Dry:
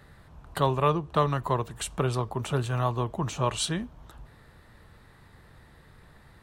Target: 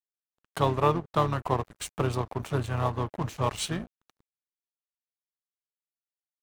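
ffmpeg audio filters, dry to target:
ffmpeg -i in.wav -filter_complex "[0:a]asplit=2[link_01][link_02];[link_02]asetrate=33038,aresample=44100,atempo=1.33484,volume=-8dB[link_03];[link_01][link_03]amix=inputs=2:normalize=0,aeval=exprs='sgn(val(0))*max(abs(val(0))-0.0119,0)':channel_layout=same,adynamicequalizer=threshold=0.00794:dfrequency=2300:dqfactor=0.7:tfrequency=2300:tqfactor=0.7:attack=5:release=100:ratio=0.375:range=2:mode=cutabove:tftype=highshelf" out.wav

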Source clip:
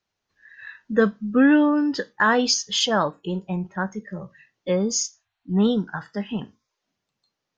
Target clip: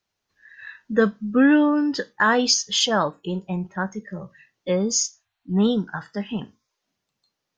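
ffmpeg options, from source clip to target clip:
ffmpeg -i in.wav -af "highshelf=frequency=5100:gain=4" out.wav

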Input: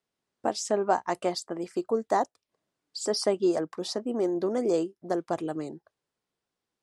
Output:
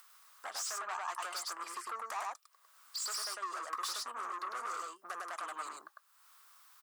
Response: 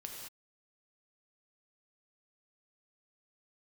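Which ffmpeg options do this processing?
-af "aemphasis=mode=production:type=50fm,acompressor=threshold=-34dB:ratio=6,aecho=1:1:102:0.708,asoftclip=type=tanh:threshold=-39dB,highpass=frequency=1200:width_type=q:width=5.3,acompressor=mode=upward:threshold=-53dB:ratio=2.5,volume=3.5dB"

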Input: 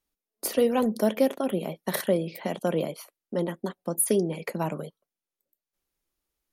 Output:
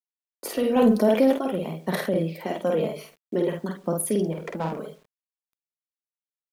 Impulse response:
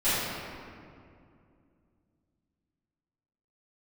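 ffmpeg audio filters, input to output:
-filter_complex "[0:a]highshelf=frequency=5100:gain=-9,asplit=2[link_01][link_02];[link_02]adelay=74,lowpass=frequency=4300:poles=1,volume=-17dB,asplit=2[link_03][link_04];[link_04]adelay=74,lowpass=frequency=4300:poles=1,volume=0.35,asplit=2[link_05][link_06];[link_06]adelay=74,lowpass=frequency=4300:poles=1,volume=0.35[link_07];[link_01][link_03][link_05][link_07]amix=inputs=4:normalize=0,aphaser=in_gain=1:out_gain=1:delay=4.7:decay=0.43:speed=0.51:type=sinusoidal,asettb=1/sr,asplit=3[link_08][link_09][link_10];[link_08]atrim=end=4.334[link_11];[link_09]atrim=start=4.33:end=4.74,asetpts=PTS-STARTPTS,afade=type=in:duration=0.004:curve=qsin,afade=type=out:start_time=0.406:duration=0.004:curve=qsin,adynamicsmooth=sensitivity=3.5:basefreq=580[link_12];[link_10]atrim=start=4.736[link_13];[link_11][link_12]acrossfade=duration=0.004:curve1=hsin:curve2=qsin[link_14];[link_14][link_13]acrossfade=duration=0.004:curve1=qsin:curve2=hsin,asplit=2[link_15][link_16];[link_16]adelay=49,volume=-3.5dB[link_17];[link_15][link_17]amix=inputs=2:normalize=0,acrusher=bits=9:mix=0:aa=0.000001,asettb=1/sr,asplit=3[link_18][link_19][link_20];[link_18]atrim=end=2.964[link_21];[link_19]atrim=start=2.96:end=3.59,asetpts=PTS-STARTPTS,afade=type=in:duration=0.004:curve=qsin,afade=type=out:start_time=0.626:duration=0.004:curve=qsin,equalizer=frequency=160:width_type=o:width=0.67:gain=5,equalizer=frequency=400:width_type=o:width=0.67:gain=6,equalizer=frequency=1000:width_type=o:width=0.67:gain=-4,equalizer=frequency=2500:width_type=o:width=0.67:gain=7[link_22];[link_20]atrim=start=3.586[link_23];[link_21][link_22]acrossfade=duration=0.004:curve1=hsin:curve2=qsin[link_24];[link_24][link_23]acrossfade=duration=0.004:curve1=qsin:curve2=hsin,alimiter=limit=-15dB:level=0:latency=1:release=13,asettb=1/sr,asplit=3[link_25][link_26][link_27];[link_25]atrim=end=0.764[link_28];[link_26]atrim=start=0.76:end=1.38,asetpts=PTS-STARTPTS,afade=type=in:duration=0.004:curve=qsin,afade=type=out:start_time=0.616:duration=0.004:curve=qsin,acontrast=31[link_29];[link_27]atrim=start=1.376[link_30];[link_28][link_29]acrossfade=duration=0.004:curve1=hsin:curve2=qsin[link_31];[link_31][link_30]acrossfade=duration=0.004:curve1=qsin:curve2=hsin"

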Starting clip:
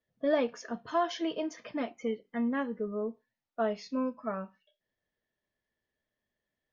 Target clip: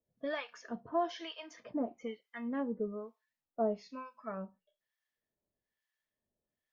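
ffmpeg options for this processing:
ffmpeg -i in.wav -filter_complex "[0:a]asettb=1/sr,asplit=3[link_01][link_02][link_03];[link_01]atrim=end=0.784[link_04];[link_02]atrim=start=0.78:end=1.36,asetpts=PTS-STARTPTS,afade=type=in:duration=0.004:curve=qsin,afade=type=out:start_time=0.576:duration=0.004:curve=qsin,lowpass=frequency=5800:width_type=q:width=2.1[link_05];[link_03]atrim=start=1.356[link_06];[link_04][link_05]acrossfade=duration=0.004:curve1=hsin:curve2=qsin[link_07];[link_07][link_06]acrossfade=duration=0.004:curve1=qsin:curve2=hsin,acrossover=split=940[link_08][link_09];[link_08]aeval=exprs='val(0)*(1-1/2+1/2*cos(2*PI*1.1*n/s))':channel_layout=same[link_10];[link_09]aeval=exprs='val(0)*(1-1/2-1/2*cos(2*PI*1.1*n/s))':channel_layout=same[link_11];[link_10][link_11]amix=inputs=2:normalize=0,acrossover=split=3400[link_12][link_13];[link_13]acompressor=threshold=-54dB:ratio=4:attack=1:release=60[link_14];[link_12][link_14]amix=inputs=2:normalize=0" out.wav

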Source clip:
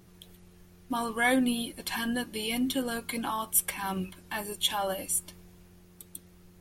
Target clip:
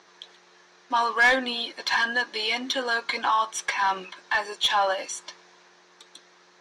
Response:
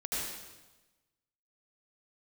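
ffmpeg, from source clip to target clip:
-filter_complex "[0:a]highpass=430,equalizer=frequency=1000:width_type=q:width=4:gain=5,equalizer=frequency=1700:width_type=q:width=4:gain=5,equalizer=frequency=2800:width_type=q:width=4:gain=-3,equalizer=frequency=4000:width_type=q:width=4:gain=5,equalizer=frequency=6000:width_type=q:width=4:gain=7,lowpass=frequency=6300:width=0.5412,lowpass=frequency=6300:width=1.3066,asplit=2[link_01][link_02];[link_02]highpass=frequency=720:poles=1,volume=16dB,asoftclip=type=tanh:threshold=-10dB[link_03];[link_01][link_03]amix=inputs=2:normalize=0,lowpass=frequency=3400:poles=1,volume=-6dB"

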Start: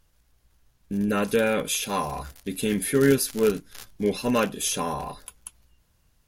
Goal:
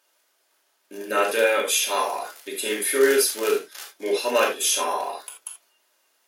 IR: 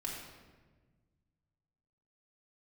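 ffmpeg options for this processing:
-filter_complex "[0:a]highpass=frequency=430:width=0.5412,highpass=frequency=430:width=1.3066[link_01];[1:a]atrim=start_sample=2205,atrim=end_sample=3969[link_02];[link_01][link_02]afir=irnorm=-1:irlink=0,volume=6.5dB"

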